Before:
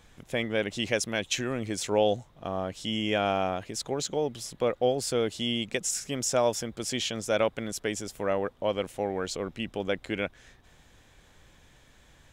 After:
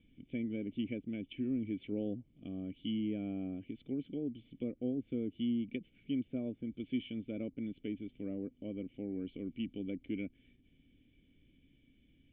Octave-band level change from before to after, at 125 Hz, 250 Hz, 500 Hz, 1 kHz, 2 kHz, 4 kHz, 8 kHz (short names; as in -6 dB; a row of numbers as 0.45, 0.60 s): -8.0 dB, -2.0 dB, -17.0 dB, under -30 dB, -20.0 dB, -20.0 dB, under -40 dB